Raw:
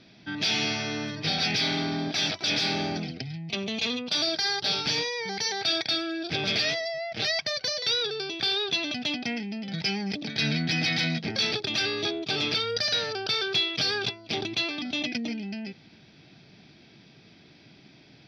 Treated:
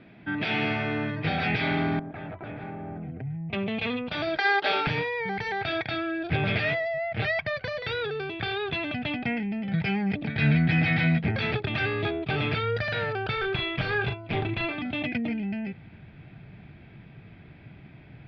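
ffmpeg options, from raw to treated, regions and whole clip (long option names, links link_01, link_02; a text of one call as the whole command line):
ffmpeg -i in.wav -filter_complex "[0:a]asettb=1/sr,asplit=3[link_01][link_02][link_03];[link_01]atrim=end=1.994[link_04];[link_02]atrim=start=1.99:end=3.53,asetpts=PTS-STARTPTS,afade=type=in:duration=0.004:curve=qsin,afade=type=out:start_time=1.536:duration=0.004:curve=qsin,lowpass=1200,acompressor=threshold=-37dB:ratio=10:attack=3.2:release=140:knee=1:detection=peak[link_05];[link_03]atrim=start=3.526[link_06];[link_04][link_05]acrossfade=duration=0.004:curve1=hsin:curve2=qsin[link_07];[link_07][link_06]acrossfade=duration=0.004:curve1=qsin:curve2=hsin,asettb=1/sr,asplit=3[link_08][link_09][link_10];[link_08]atrim=end=4.374[link_11];[link_09]atrim=start=4.37:end=4.87,asetpts=PTS-STARTPTS,afade=type=in:duration=0.004:curve=qsin,afade=type=out:start_time=0.496:duration=0.004:curve=qsin,highpass=frequency=310:width=0.5412,highpass=frequency=310:width=1.3066,acontrast=45[link_12];[link_10]atrim=start=4.866[link_13];[link_11][link_12]acrossfade=duration=0.004:curve1=hsin:curve2=qsin[link_14];[link_14][link_13]acrossfade=duration=0.004:curve1=qsin:curve2=hsin,asettb=1/sr,asplit=3[link_15][link_16][link_17];[link_15]atrim=end=13.364[link_18];[link_16]atrim=start=13.36:end=14.76,asetpts=PTS-STARTPTS,afade=type=in:duration=0.004:curve=qsin,afade=type=out:start_time=1.396:duration=0.004:curve=qsin,highshelf=frequency=10000:gain=-11.5,asoftclip=type=hard:threshold=-23.5dB,asplit=2[link_19][link_20];[link_20]adelay=39,volume=-7dB[link_21];[link_19][link_21]amix=inputs=2:normalize=0,atrim=end_sample=61740[link_22];[link_17]atrim=start=14.756[link_23];[link_18][link_22]acrossfade=duration=0.004:curve1=hsin:curve2=qsin[link_24];[link_24][link_23]acrossfade=duration=0.004:curve1=qsin:curve2=hsin,lowpass=frequency=2400:width=0.5412,lowpass=frequency=2400:width=1.3066,asubboost=boost=5.5:cutoff=110,volume=4.5dB" out.wav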